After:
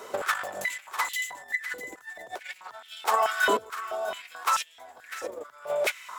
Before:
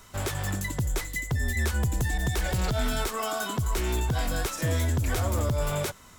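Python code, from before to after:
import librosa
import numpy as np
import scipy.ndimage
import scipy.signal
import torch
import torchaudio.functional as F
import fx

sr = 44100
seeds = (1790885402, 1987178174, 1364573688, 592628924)

y = fx.high_shelf(x, sr, hz=2300.0, db=-10.0)
y = fx.over_compress(y, sr, threshold_db=-34.0, ratio=-0.5)
y = y + 10.0 ** (-12.0 / 20.0) * np.pad(y, (int(649 * sr / 1000.0), 0))[:len(y)]
y = fx.filter_held_highpass(y, sr, hz=4.6, low_hz=460.0, high_hz=3000.0)
y = F.gain(torch.from_numpy(y), 4.0).numpy()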